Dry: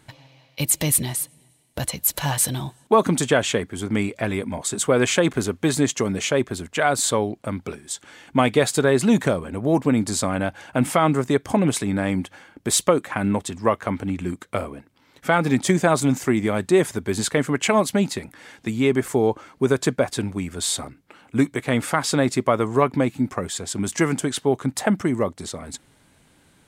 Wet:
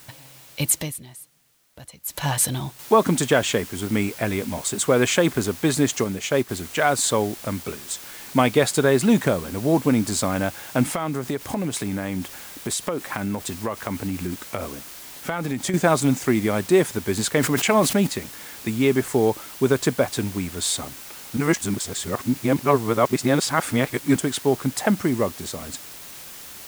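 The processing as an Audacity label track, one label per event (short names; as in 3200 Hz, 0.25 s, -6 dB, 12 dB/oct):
0.710000	2.260000	dip -16 dB, fades 0.23 s
2.790000	2.790000	noise floor step -48 dB -40 dB
6.040000	6.490000	upward expander, over -32 dBFS
10.920000	15.740000	compressor 5:1, threshold -22 dBFS
17.310000	18.070000	sustainer at most 83 dB/s
21.370000	24.160000	reverse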